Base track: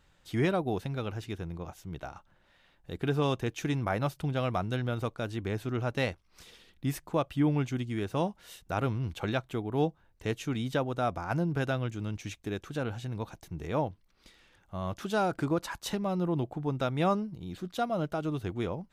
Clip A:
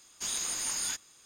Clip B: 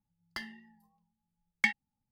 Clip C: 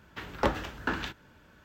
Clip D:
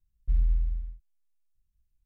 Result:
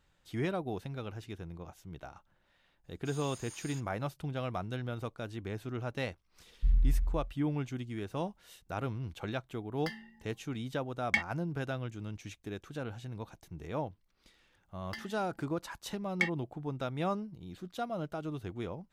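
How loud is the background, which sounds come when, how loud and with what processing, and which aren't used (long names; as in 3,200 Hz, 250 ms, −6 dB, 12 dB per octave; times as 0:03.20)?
base track −6 dB
0:02.84: mix in A −17 dB + multiband upward and downward expander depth 40%
0:06.35: mix in D −2 dB + hollow resonant body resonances 230 Hz, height 8 dB
0:09.50: mix in B −1.5 dB
0:14.57: mix in B −3.5 dB
not used: C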